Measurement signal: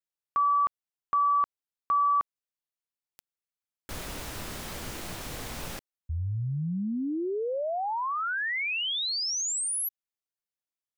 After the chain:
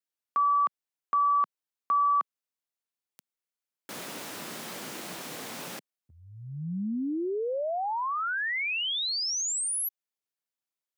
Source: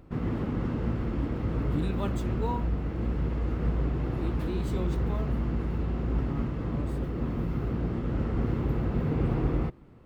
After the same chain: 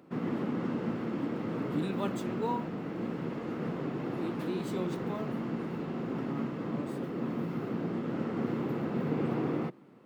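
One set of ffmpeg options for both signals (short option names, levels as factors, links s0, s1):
-af "highpass=f=170:w=0.5412,highpass=f=170:w=1.3066"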